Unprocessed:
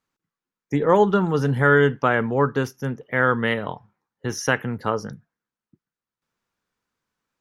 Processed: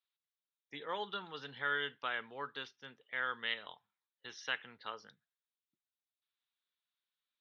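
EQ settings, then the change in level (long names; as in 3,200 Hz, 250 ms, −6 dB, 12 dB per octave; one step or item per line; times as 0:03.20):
resonant band-pass 3,700 Hz, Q 5
high-frequency loss of the air 240 metres
+6.5 dB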